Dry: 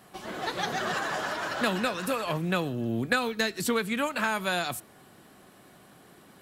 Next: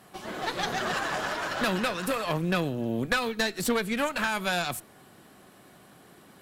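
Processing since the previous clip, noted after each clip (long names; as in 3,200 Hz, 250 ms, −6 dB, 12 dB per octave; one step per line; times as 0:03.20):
tube saturation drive 22 dB, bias 0.7
level +4.5 dB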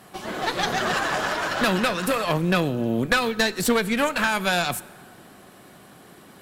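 dense smooth reverb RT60 2.3 s, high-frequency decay 0.55×, DRR 19 dB
level +5.5 dB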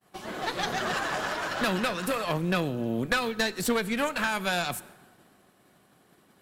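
downward expander −41 dBFS
level −5.5 dB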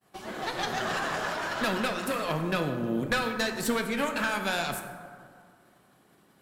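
dense smooth reverb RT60 2 s, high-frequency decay 0.35×, DRR 5 dB
level −2 dB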